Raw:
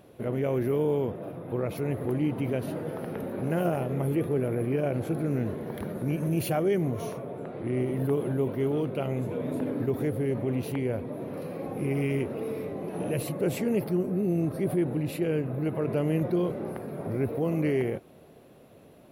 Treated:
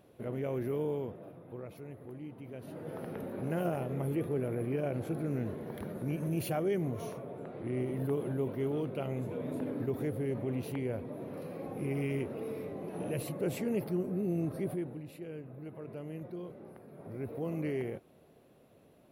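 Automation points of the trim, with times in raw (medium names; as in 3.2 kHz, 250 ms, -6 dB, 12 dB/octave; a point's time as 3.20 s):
0.84 s -7.5 dB
1.97 s -17.5 dB
2.48 s -17.5 dB
2.96 s -6 dB
14.60 s -6 dB
15.06 s -16 dB
16.86 s -16 dB
17.43 s -8.5 dB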